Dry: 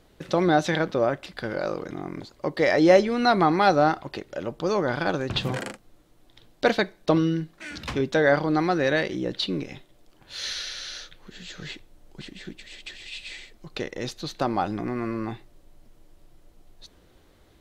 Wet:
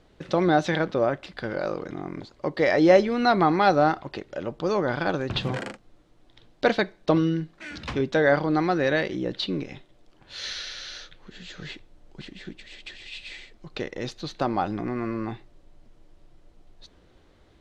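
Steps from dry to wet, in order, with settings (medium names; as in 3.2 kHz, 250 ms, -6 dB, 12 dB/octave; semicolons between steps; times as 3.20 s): distance through air 69 m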